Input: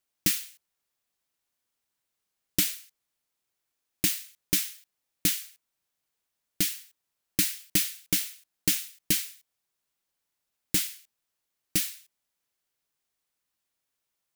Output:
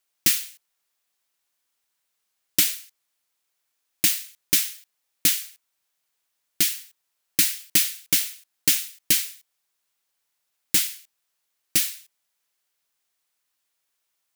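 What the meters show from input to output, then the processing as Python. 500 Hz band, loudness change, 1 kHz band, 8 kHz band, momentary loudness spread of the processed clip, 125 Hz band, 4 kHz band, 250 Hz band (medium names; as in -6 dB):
0.0 dB, +6.0 dB, +4.5 dB, +6.0 dB, 11 LU, -3.5 dB, +6.0 dB, -1.5 dB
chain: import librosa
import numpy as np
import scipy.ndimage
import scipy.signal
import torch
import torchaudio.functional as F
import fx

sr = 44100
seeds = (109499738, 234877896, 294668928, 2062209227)

y = fx.low_shelf(x, sr, hz=440.0, db=-10.5)
y = F.gain(torch.from_numpy(y), 6.0).numpy()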